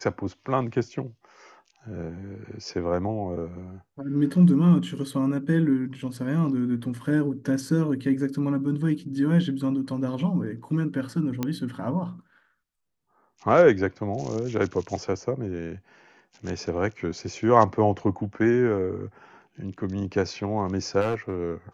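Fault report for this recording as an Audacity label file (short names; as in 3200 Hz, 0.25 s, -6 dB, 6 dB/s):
11.430000	11.430000	pop -13 dBFS
21.000000	21.400000	clipped -21 dBFS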